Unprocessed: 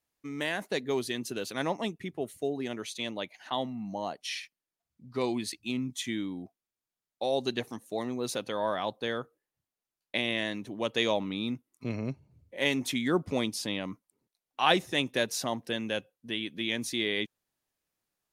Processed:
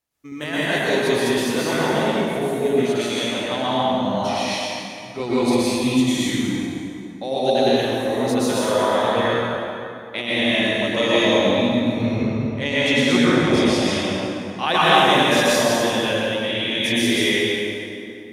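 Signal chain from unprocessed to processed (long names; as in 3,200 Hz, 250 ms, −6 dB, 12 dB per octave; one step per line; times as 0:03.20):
delay that plays each chunk backwards 106 ms, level −0.5 dB
0:12.05–0:13.88: low-pass filter 7,200 Hz 12 dB per octave
dense smooth reverb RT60 2.7 s, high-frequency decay 0.65×, pre-delay 105 ms, DRR −9 dB
level +1 dB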